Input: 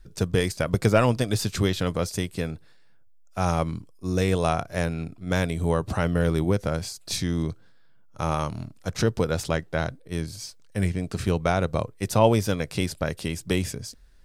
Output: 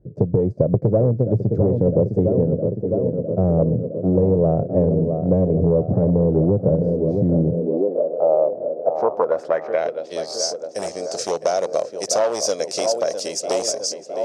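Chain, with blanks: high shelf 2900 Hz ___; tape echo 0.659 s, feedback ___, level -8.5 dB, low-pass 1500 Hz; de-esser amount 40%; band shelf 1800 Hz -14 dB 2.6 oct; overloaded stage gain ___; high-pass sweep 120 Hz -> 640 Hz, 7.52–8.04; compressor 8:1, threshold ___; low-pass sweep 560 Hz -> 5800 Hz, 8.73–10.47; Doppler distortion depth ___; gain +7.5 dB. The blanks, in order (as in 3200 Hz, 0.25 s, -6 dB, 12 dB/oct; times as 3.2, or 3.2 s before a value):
+4 dB, 82%, 17 dB, -23 dBFS, 0.12 ms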